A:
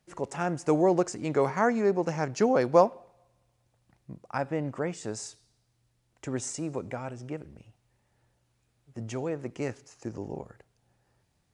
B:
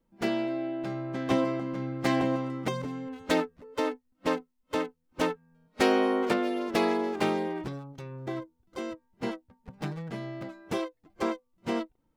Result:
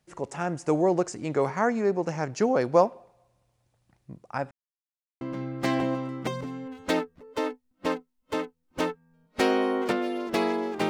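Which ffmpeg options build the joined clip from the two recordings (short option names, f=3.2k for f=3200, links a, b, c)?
-filter_complex "[0:a]apad=whole_dur=10.89,atrim=end=10.89,asplit=2[a][b];[a]atrim=end=4.51,asetpts=PTS-STARTPTS,afade=t=out:st=4.506:d=0.004:c=hsin[c];[b]atrim=start=4.51:end=5.21,asetpts=PTS-STARTPTS,volume=0[d];[1:a]atrim=start=1.62:end=7.3,asetpts=PTS-STARTPTS,afade=t=in:d=0.004:c=hsin[e];[c][d][e]concat=n=3:v=0:a=1"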